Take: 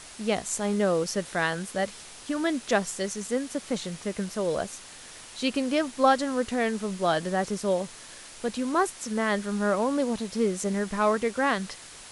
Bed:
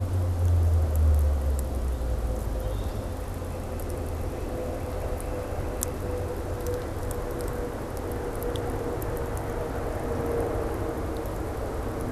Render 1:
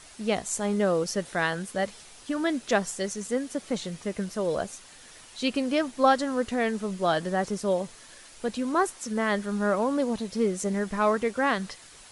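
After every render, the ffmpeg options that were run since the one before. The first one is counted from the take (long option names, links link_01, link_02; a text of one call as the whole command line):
ffmpeg -i in.wav -af "afftdn=noise_reduction=6:noise_floor=-46" out.wav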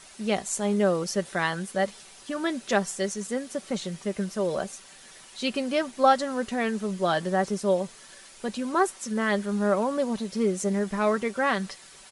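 ffmpeg -i in.wav -af "lowshelf=frequency=68:gain=-9,aecho=1:1:5.2:0.4" out.wav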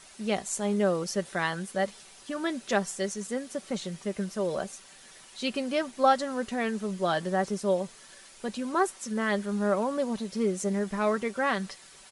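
ffmpeg -i in.wav -af "volume=-2.5dB" out.wav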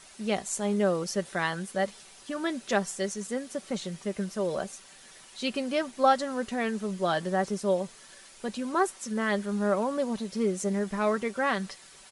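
ffmpeg -i in.wav -af anull out.wav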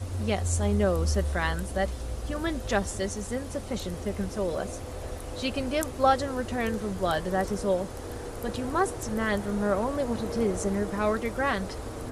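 ffmpeg -i in.wav -i bed.wav -filter_complex "[1:a]volume=-6dB[link_01];[0:a][link_01]amix=inputs=2:normalize=0" out.wav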